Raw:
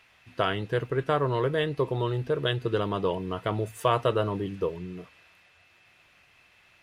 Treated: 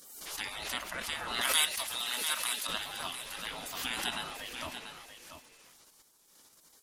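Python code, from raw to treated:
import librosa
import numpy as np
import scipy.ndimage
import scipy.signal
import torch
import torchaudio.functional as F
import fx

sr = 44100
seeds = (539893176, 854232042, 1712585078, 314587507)

p1 = fx.bass_treble(x, sr, bass_db=0, treble_db=12)
p2 = fx.spec_gate(p1, sr, threshold_db=-20, keep='weak')
p3 = fx.tilt_eq(p2, sr, slope=4.5, at=(1.41, 2.67))
p4 = fx.level_steps(p3, sr, step_db=17)
p5 = p3 + (p4 * 10.0 ** (1.0 / 20.0))
p6 = p5 + 10.0 ** (-9.5 / 20.0) * np.pad(p5, (int(689 * sr / 1000.0), 0))[:len(p5)]
y = fx.pre_swell(p6, sr, db_per_s=48.0)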